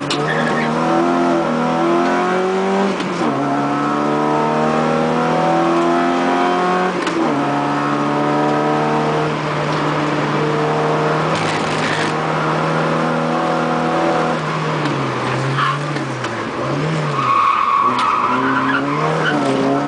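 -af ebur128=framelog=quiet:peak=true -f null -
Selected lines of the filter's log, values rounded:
Integrated loudness:
  I:         -16.7 LUFS
  Threshold: -26.7 LUFS
Loudness range:
  LRA:         1.9 LU
  Threshold: -36.8 LUFS
  LRA low:   -17.7 LUFS
  LRA high:  -15.8 LUFS
True peak:
  Peak:       -3.5 dBFS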